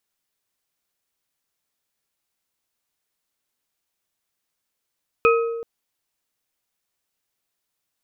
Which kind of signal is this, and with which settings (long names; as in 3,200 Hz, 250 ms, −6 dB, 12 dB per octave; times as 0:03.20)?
struck glass bar, length 0.38 s, lowest mode 462 Hz, modes 3, decay 1.37 s, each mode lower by 2 dB, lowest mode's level −13 dB